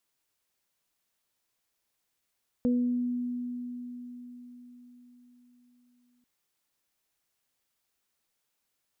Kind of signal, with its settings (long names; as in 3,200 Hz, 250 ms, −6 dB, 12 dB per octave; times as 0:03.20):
harmonic partials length 3.59 s, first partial 245 Hz, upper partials −7 dB, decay 4.80 s, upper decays 0.60 s, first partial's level −22 dB